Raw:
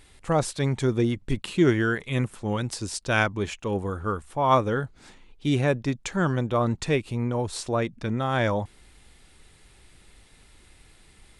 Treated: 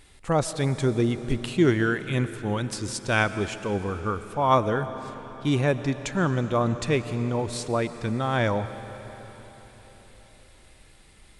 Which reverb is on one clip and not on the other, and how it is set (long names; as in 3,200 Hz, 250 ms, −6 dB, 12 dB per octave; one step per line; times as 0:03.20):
comb and all-pass reverb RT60 4.5 s, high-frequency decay 0.95×, pre-delay 75 ms, DRR 11.5 dB